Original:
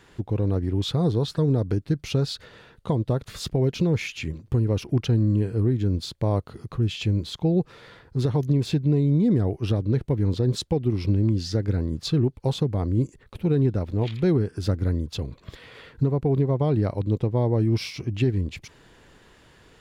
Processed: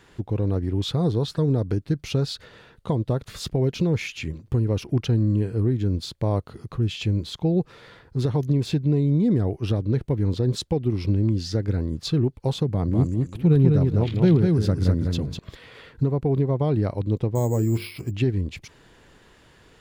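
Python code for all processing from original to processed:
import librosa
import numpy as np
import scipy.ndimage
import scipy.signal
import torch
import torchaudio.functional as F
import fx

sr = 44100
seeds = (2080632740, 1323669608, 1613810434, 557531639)

y = fx.chain(x, sr, fx.peak_eq(hz=160.0, db=7.5, octaves=0.54),
    fx.echo_feedback(ms=201, feedback_pct=17, wet_db=-3.5), at=(12.68, 15.39))
y = fx.chain(y, sr, fx.hum_notches(base_hz=50, count=9),
    fx.resample_bad(factor=6, down='filtered', up='hold'), at=(17.35, 18.11))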